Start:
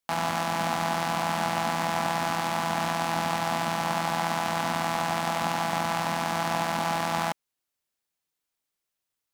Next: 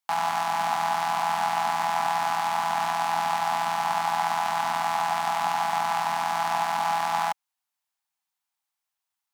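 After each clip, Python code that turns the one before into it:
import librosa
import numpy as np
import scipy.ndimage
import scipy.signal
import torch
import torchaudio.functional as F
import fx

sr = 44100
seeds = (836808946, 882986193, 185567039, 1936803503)

y = scipy.signal.sosfilt(scipy.signal.butter(2, 62.0, 'highpass', fs=sr, output='sos'), x)
y = fx.low_shelf_res(y, sr, hz=630.0, db=-8.5, q=3.0)
y = y * 10.0 ** (-1.5 / 20.0)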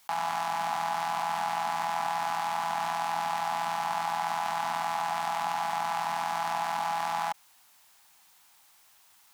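y = fx.env_flatten(x, sr, amount_pct=50)
y = y * 10.0 ** (-6.0 / 20.0)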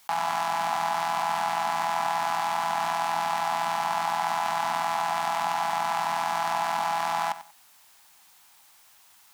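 y = fx.echo_feedback(x, sr, ms=93, feedback_pct=22, wet_db=-14.0)
y = y * 10.0 ** (3.5 / 20.0)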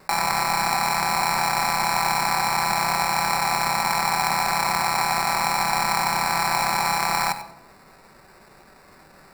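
y = fx.sample_hold(x, sr, seeds[0], rate_hz=3200.0, jitter_pct=0)
y = fx.room_shoebox(y, sr, seeds[1], volume_m3=3400.0, walls='furnished', distance_m=1.1)
y = y * 10.0 ** (5.0 / 20.0)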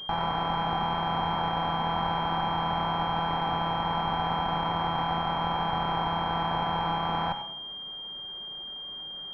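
y = fx.clip_asym(x, sr, top_db=-26.5, bottom_db=-13.0)
y = fx.pwm(y, sr, carrier_hz=3200.0)
y = y * 10.0 ** (-2.0 / 20.0)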